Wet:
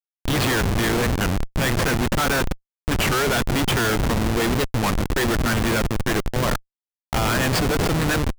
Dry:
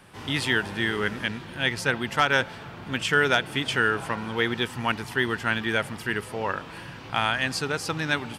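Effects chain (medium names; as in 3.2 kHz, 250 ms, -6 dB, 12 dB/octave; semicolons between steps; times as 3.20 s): thinning echo 162 ms, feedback 26%, high-pass 150 Hz, level -18.5 dB; Schmitt trigger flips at -28.5 dBFS; warped record 33 1/3 rpm, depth 250 cents; trim +7 dB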